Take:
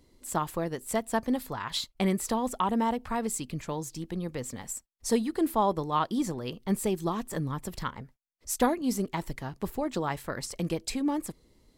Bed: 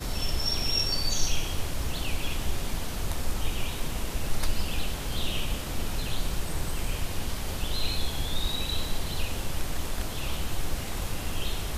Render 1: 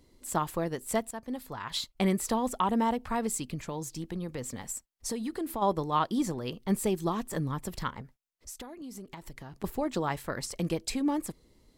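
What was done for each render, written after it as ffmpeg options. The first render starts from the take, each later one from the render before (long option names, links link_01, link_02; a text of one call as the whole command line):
ffmpeg -i in.wav -filter_complex "[0:a]asplit=3[link_01][link_02][link_03];[link_01]afade=type=out:start_time=3.54:duration=0.02[link_04];[link_02]acompressor=threshold=-30dB:ratio=6:attack=3.2:release=140:knee=1:detection=peak,afade=type=in:start_time=3.54:duration=0.02,afade=type=out:start_time=5.61:duration=0.02[link_05];[link_03]afade=type=in:start_time=5.61:duration=0.02[link_06];[link_04][link_05][link_06]amix=inputs=3:normalize=0,asettb=1/sr,asplit=3[link_07][link_08][link_09];[link_07]atrim=end=8.014[link_10];[link_08]atrim=start=8.01:end=9.64,asetpts=PTS-STARTPTS,afade=type=in:duration=0.004:curve=qsin,afade=type=out:start_time=1.626:duration=0.004:curve=qsin,acompressor=threshold=-39dB:ratio=20:attack=3.2:release=140:knee=1:detection=peak[link_11];[link_09]atrim=start=9.636[link_12];[link_10][link_11]acrossfade=duration=0.004:curve1=hsin:curve2=qsin[link_13];[link_13][link_12]acrossfade=duration=0.004:curve1=qsin:curve2=hsin,asplit=2[link_14][link_15];[link_14]atrim=end=1.11,asetpts=PTS-STARTPTS,afade=type=out:start_time=1.106:duration=0.004:curve=hsin:silence=0.188365[link_16];[link_15]atrim=start=1.11,asetpts=PTS-STARTPTS,afade=type=in:duration=0.82:silence=0.188365[link_17];[link_16][link_17]concat=n=2:v=0:a=1" out.wav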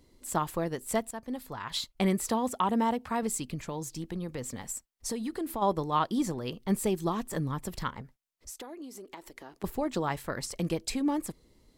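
ffmpeg -i in.wav -filter_complex "[0:a]asettb=1/sr,asplit=3[link_01][link_02][link_03];[link_01]atrim=end=2.304[link_04];[link_02]atrim=start=2.3:end=3.23,asetpts=PTS-STARTPTS,afade=type=in:duration=0.004:curve=qsin,afade=type=out:start_time=0.926:duration=0.004:curve=qsin,highpass=80[link_05];[link_03]atrim=start=3.226[link_06];[link_04][link_05]acrossfade=duration=0.004:curve1=hsin:curve2=qsin[link_07];[link_07][link_06]acrossfade=duration=0.004:curve1=qsin:curve2=hsin,asettb=1/sr,asplit=3[link_08][link_09][link_10];[link_08]atrim=end=8.504[link_11];[link_09]atrim=start=8.5:end=9.63,asetpts=PTS-STARTPTS,afade=type=in:duration=0.004:curve=qsin,afade=type=out:start_time=1.126:duration=0.004:curve=qsin,lowshelf=frequency=220:width_type=q:width=1.5:gain=-13.5[link_12];[link_10]atrim=start=9.626[link_13];[link_11][link_12]acrossfade=duration=0.004:curve1=hsin:curve2=qsin[link_14];[link_14][link_13]acrossfade=duration=0.004:curve1=qsin:curve2=hsin" out.wav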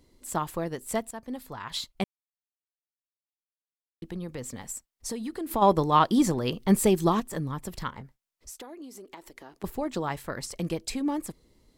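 ffmpeg -i in.wav -filter_complex "[0:a]asettb=1/sr,asplit=3[link_01][link_02][link_03];[link_01]atrim=end=5.514[link_04];[link_02]atrim=start=5.51:end=7.2,asetpts=PTS-STARTPTS,afade=type=in:duration=0.004:curve=qsin,afade=type=out:start_time=1.686:duration=0.004:curve=qsin,acontrast=83[link_05];[link_03]atrim=start=7.196[link_06];[link_04][link_05]acrossfade=duration=0.004:curve1=hsin:curve2=qsin[link_07];[link_07][link_06]acrossfade=duration=0.004:curve1=qsin:curve2=hsin,asettb=1/sr,asplit=3[link_08][link_09][link_10];[link_08]atrim=end=7.904[link_11];[link_09]atrim=start=7.9:end=8.57,asetpts=PTS-STARTPTS,afade=type=in:duration=0.004:curve=qsin,afade=type=out:start_time=0.666:duration=0.004:curve=qsin,asplit=2[link_12][link_13];[link_13]adelay=22,volume=-12.5dB[link_14];[link_12][link_14]amix=inputs=2:normalize=0,atrim=end_sample=29547[link_15];[link_10]atrim=start=8.566[link_16];[link_11][link_15]acrossfade=duration=0.004:curve1=hsin:curve2=qsin[link_17];[link_17][link_16]acrossfade=duration=0.004:curve1=qsin:curve2=hsin,asplit=3[link_18][link_19][link_20];[link_18]atrim=end=2.04,asetpts=PTS-STARTPTS,afade=type=out:start_time=2.036:duration=0.004:curve=hsin[link_21];[link_19]atrim=start=2.04:end=4.02,asetpts=PTS-STARTPTS,volume=0[link_22];[link_20]atrim=start=4.02,asetpts=PTS-STARTPTS,afade=type=in:duration=0.004:curve=hsin[link_23];[link_21][link_22][link_23]concat=n=3:v=0:a=1" out.wav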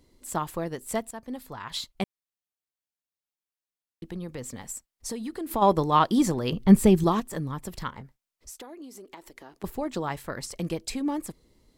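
ffmpeg -i in.wav -filter_complex "[0:a]asettb=1/sr,asplit=3[link_01][link_02][link_03];[link_01]atrim=end=6.524[link_04];[link_02]atrim=start=6.52:end=7.04,asetpts=PTS-STARTPTS,afade=type=in:duration=0.004:curve=qsin,afade=type=out:start_time=0.516:duration=0.004:curve=qsin,bass=frequency=250:gain=9,treble=frequency=4000:gain=-4[link_05];[link_03]atrim=start=7.036[link_06];[link_04][link_05]acrossfade=duration=0.004:curve1=hsin:curve2=qsin[link_07];[link_07][link_06]acrossfade=duration=0.004:curve1=qsin:curve2=hsin" out.wav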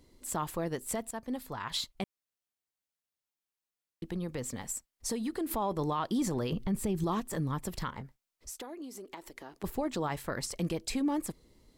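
ffmpeg -i in.wav -af "acompressor=threshold=-26dB:ratio=2.5,alimiter=limit=-23.5dB:level=0:latency=1:release=16" out.wav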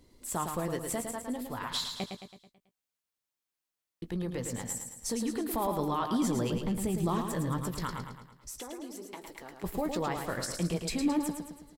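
ffmpeg -i in.wav -filter_complex "[0:a]asplit=2[link_01][link_02];[link_02]adelay=17,volume=-11dB[link_03];[link_01][link_03]amix=inputs=2:normalize=0,aecho=1:1:109|218|327|436|545|654:0.501|0.251|0.125|0.0626|0.0313|0.0157" out.wav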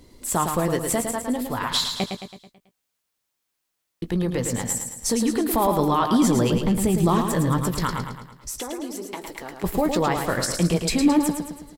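ffmpeg -i in.wav -af "volume=10.5dB" out.wav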